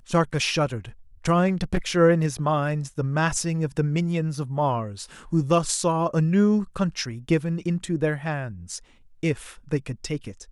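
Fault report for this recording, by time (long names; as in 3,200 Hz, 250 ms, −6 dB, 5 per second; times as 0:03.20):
0:01.47–0:01.97: clipping −17.5 dBFS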